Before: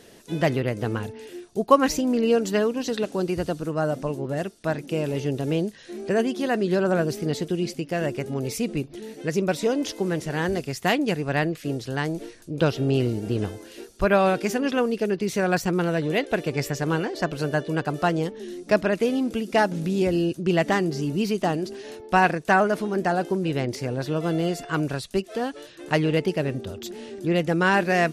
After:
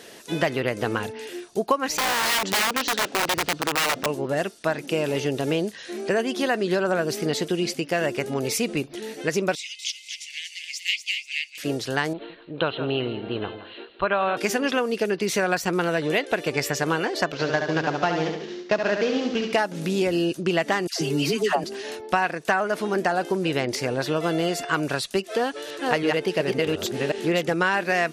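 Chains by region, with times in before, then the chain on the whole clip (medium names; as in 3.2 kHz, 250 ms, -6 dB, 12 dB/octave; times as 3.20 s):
1.97–4.06 s: low-pass 4.5 kHz + integer overflow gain 21 dB
9.55–11.58 s: rippled Chebyshev high-pass 2.1 kHz, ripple 3 dB + peaking EQ 12 kHz -14 dB 0.79 oct + feedback delay 238 ms, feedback 28%, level -7 dB
12.13–14.37 s: rippled Chebyshev low-pass 4.2 kHz, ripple 6 dB + delay 165 ms -13.5 dB
17.32–19.53 s: CVSD coder 32 kbps + expander -32 dBFS + feedback delay 70 ms, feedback 46%, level -6.5 dB
20.87–21.64 s: comb 7.2 ms, depth 55% + phase dispersion lows, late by 138 ms, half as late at 940 Hz + tape noise reduction on one side only encoder only
25.30–27.54 s: chunks repeated in reverse 364 ms, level -2 dB + peaking EQ 450 Hz +3 dB 0.34 oct
whole clip: low-pass 1.5 kHz 6 dB/octave; tilt EQ +4 dB/octave; compression 6:1, threshold -28 dBFS; trim +9 dB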